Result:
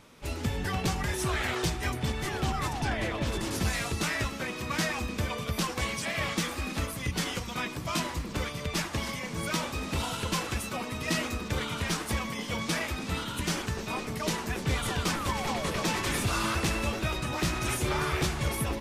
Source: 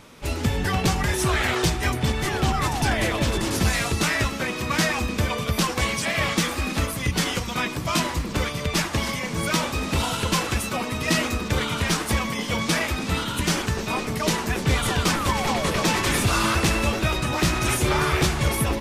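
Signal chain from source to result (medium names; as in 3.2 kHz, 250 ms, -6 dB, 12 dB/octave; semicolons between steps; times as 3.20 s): 2.72–3.25 s: treble shelf 8.7 kHz -> 5.7 kHz -11.5 dB; trim -7.5 dB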